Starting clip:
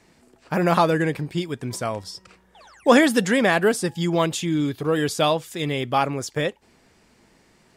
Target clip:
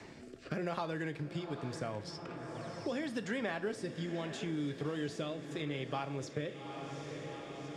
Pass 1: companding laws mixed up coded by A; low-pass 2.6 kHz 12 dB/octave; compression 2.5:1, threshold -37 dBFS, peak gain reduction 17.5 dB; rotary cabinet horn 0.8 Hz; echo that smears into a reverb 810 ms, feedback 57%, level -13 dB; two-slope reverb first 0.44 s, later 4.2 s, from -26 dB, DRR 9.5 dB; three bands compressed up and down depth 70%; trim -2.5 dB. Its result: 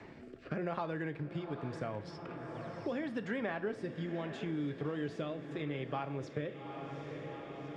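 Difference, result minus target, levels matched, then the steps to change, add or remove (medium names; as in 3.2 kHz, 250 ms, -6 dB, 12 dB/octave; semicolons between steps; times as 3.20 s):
8 kHz band -12.5 dB
change: low-pass 6.2 kHz 12 dB/octave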